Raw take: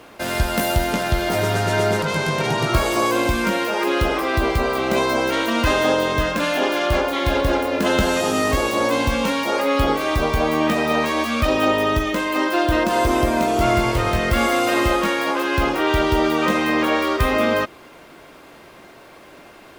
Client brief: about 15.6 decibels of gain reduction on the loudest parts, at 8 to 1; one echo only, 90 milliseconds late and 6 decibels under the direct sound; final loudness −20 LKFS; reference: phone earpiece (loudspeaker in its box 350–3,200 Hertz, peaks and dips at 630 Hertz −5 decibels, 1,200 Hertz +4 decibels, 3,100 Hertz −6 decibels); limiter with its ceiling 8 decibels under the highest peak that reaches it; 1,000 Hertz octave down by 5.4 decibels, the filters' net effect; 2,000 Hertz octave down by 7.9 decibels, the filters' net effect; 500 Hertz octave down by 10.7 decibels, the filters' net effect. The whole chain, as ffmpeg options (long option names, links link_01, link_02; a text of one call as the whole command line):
ffmpeg -i in.wav -af "equalizer=frequency=500:width_type=o:gain=-8.5,equalizer=frequency=1000:width_type=o:gain=-3.5,equalizer=frequency=2000:width_type=o:gain=-8,acompressor=threshold=-32dB:ratio=8,alimiter=level_in=4dB:limit=-24dB:level=0:latency=1,volume=-4dB,highpass=350,equalizer=frequency=630:width_type=q:width=4:gain=-5,equalizer=frequency=1200:width_type=q:width=4:gain=4,equalizer=frequency=3100:width_type=q:width=4:gain=-6,lowpass=frequency=3200:width=0.5412,lowpass=frequency=3200:width=1.3066,aecho=1:1:90:0.501,volume=19.5dB" out.wav